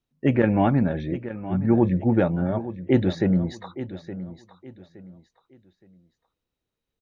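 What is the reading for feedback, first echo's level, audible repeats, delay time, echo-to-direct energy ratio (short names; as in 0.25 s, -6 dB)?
29%, -13.5 dB, 3, 0.868 s, -13.0 dB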